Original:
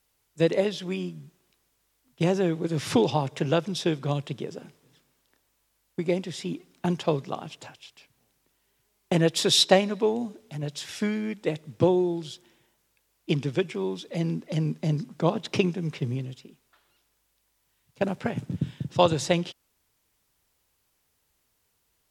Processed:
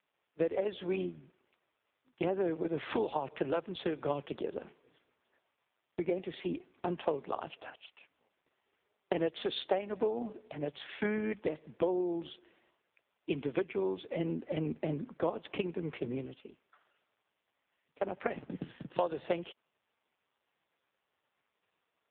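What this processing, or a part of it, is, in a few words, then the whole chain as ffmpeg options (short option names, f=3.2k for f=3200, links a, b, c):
voicemail: -af "highpass=340,lowpass=2.7k,acompressor=threshold=-31dB:ratio=6,volume=3.5dB" -ar 8000 -c:a libopencore_amrnb -b:a 4750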